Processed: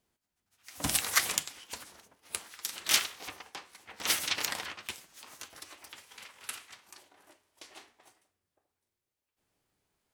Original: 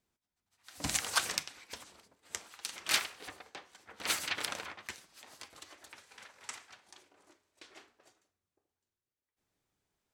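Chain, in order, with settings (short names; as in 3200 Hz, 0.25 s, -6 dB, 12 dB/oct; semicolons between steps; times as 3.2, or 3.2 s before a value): formant shift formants +5 st; gain +4 dB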